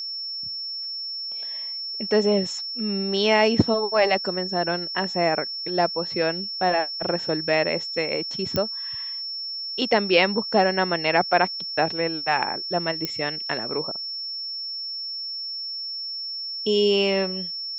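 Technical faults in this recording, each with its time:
tone 5400 Hz -29 dBFS
8.56 pop -10 dBFS
13.05 pop -11 dBFS

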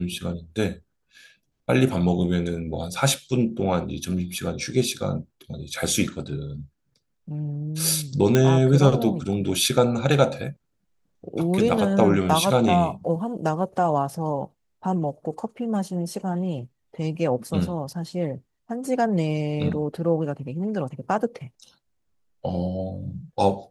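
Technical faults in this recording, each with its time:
8.35 pop -6 dBFS

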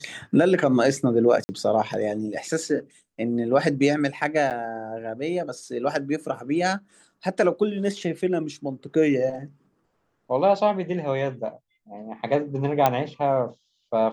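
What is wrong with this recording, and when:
1.44–1.49 gap 50 ms
4.5–4.51 gap 8.1 ms
12.86 pop -6 dBFS

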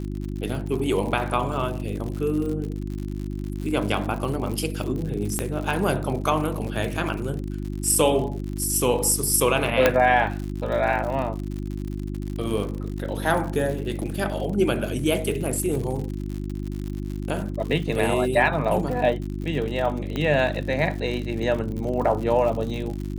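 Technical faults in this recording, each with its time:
crackle 77/s -30 dBFS
hum 50 Hz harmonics 7 -30 dBFS
5.39 pop -10 dBFS
9.86 pop -3 dBFS
20.16 pop -15 dBFS

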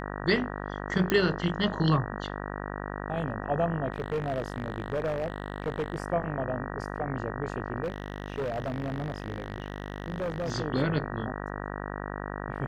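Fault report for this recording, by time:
buzz 50 Hz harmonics 38 -36 dBFS
1.1 pop -11 dBFS
3.92–5.98 clipped -25 dBFS
7.83–10.51 clipped -27.5 dBFS

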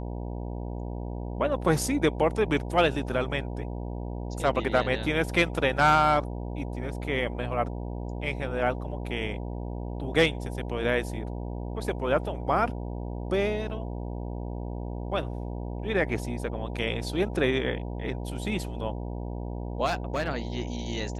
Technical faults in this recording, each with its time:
buzz 60 Hz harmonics 16 -34 dBFS
19.85–20.29 clipped -23 dBFS

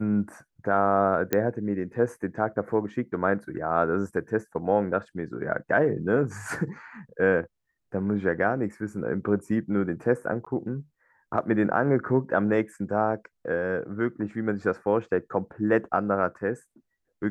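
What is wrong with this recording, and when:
1.33 pop -9 dBFS
10.45–10.46 gap 15 ms

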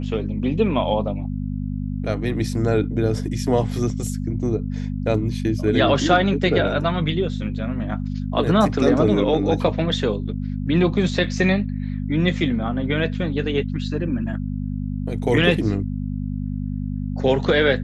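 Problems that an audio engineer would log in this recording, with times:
hum 50 Hz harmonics 5 -26 dBFS

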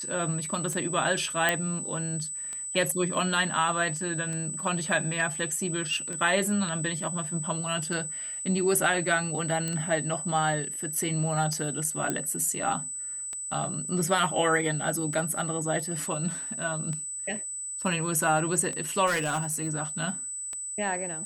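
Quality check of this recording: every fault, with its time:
tick 33 1/3 rpm -22 dBFS
tone 8000 Hz -33 dBFS
1.49 pop -9 dBFS
9.68 pop -17 dBFS
12.1 pop -14 dBFS
19.06–19.69 clipped -23.5 dBFS

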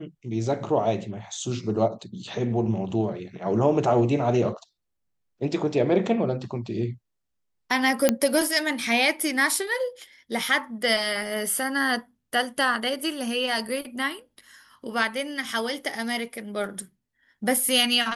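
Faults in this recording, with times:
8.09 pop -4 dBFS

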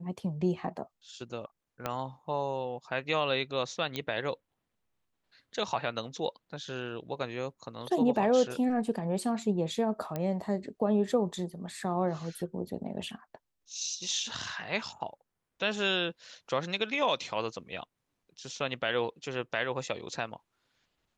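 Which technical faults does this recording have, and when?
1.86 pop -17 dBFS
3.96 pop -19 dBFS
10.16 pop -20 dBFS

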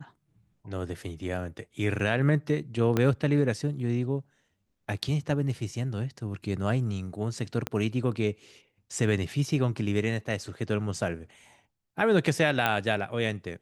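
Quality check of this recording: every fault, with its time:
2.97 pop -12 dBFS
7.67 pop -14 dBFS
12.66 pop -11 dBFS

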